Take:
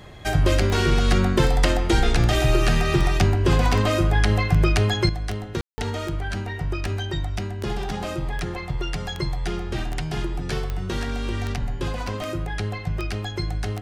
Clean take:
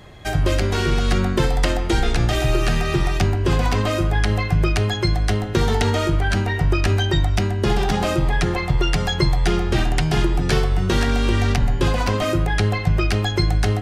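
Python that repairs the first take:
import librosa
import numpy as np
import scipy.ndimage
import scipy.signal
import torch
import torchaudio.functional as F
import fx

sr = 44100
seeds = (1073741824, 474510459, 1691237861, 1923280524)

y = fx.fix_declick_ar(x, sr, threshold=10.0)
y = fx.fix_ambience(y, sr, seeds[0], print_start_s=0.0, print_end_s=0.5, start_s=5.61, end_s=5.78)
y = fx.fix_level(y, sr, at_s=5.09, step_db=8.5)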